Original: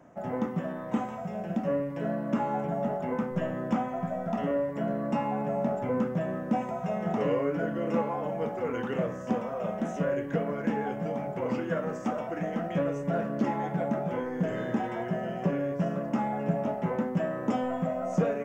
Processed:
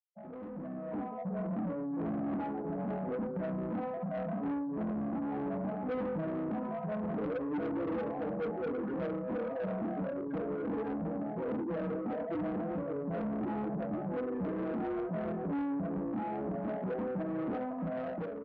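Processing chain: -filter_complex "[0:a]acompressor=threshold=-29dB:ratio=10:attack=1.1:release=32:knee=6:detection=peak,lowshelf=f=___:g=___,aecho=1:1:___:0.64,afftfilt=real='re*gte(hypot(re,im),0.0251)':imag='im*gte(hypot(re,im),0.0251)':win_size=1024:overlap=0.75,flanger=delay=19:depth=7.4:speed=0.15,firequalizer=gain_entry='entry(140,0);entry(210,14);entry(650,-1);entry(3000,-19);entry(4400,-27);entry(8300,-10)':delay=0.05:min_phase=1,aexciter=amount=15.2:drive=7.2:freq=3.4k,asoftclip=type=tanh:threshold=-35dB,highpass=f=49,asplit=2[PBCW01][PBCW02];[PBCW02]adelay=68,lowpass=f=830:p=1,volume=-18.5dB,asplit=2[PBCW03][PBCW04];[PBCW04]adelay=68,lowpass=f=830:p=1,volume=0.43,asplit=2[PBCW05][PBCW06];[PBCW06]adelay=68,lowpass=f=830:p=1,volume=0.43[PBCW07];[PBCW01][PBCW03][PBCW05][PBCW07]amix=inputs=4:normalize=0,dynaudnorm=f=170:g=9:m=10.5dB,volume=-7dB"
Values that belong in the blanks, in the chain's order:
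230, -11, 6.3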